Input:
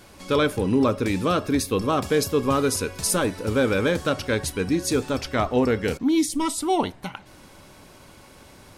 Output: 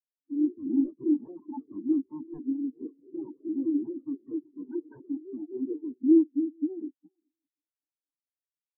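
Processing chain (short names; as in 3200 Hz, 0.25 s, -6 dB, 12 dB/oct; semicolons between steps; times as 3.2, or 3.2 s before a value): band shelf 1700 Hz -8.5 dB; harmonic-percussive split harmonic -14 dB; vocal tract filter u; low shelf 370 Hz -9 dB; sine folder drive 13 dB, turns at -25.5 dBFS; echoes that change speed 0.133 s, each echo +3 st, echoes 2, each echo -6 dB; echo with dull and thin repeats by turns 0.405 s, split 890 Hz, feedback 56%, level -10.5 dB; spectral expander 4:1; gain +7.5 dB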